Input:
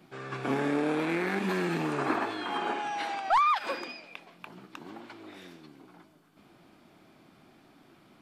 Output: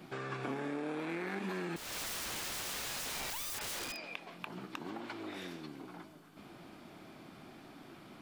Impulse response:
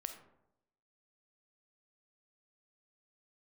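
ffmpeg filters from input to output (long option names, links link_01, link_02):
-filter_complex "[0:a]asettb=1/sr,asplit=3[link_01][link_02][link_03];[link_01]atrim=end=1.764[link_04];[link_02]atrim=start=1.76:end=4.04,asetpts=PTS-STARTPTS,afade=type=in:duration=0.004:curve=qsin,afade=type=out:start_time=2.276:duration=0.004:curve=qsin,aeval=exprs='(mod(56.2*val(0)+1,2)-1)/56.2':channel_layout=same[link_05];[link_03]atrim=start=4.036[link_06];[link_04][link_05]acrossfade=duration=0.004:curve1=hsin:curve2=qsin[link_07];[link_07][link_06]acrossfade=duration=0.004:curve1=qsin:curve2=hsin,acompressor=threshold=-44dB:ratio=4,volume=5dB"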